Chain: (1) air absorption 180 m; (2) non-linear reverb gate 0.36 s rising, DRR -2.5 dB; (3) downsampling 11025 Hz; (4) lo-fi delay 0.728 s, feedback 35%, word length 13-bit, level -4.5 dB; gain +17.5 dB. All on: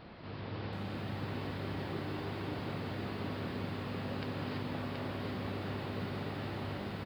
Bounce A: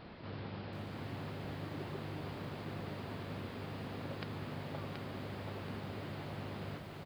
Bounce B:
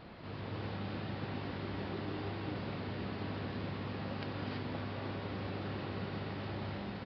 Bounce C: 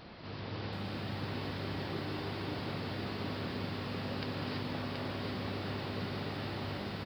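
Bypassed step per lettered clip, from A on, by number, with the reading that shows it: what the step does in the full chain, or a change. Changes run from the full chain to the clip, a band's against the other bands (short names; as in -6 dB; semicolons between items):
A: 2, crest factor change +5.0 dB; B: 4, loudness change -1.0 LU; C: 1, 4 kHz band +4.0 dB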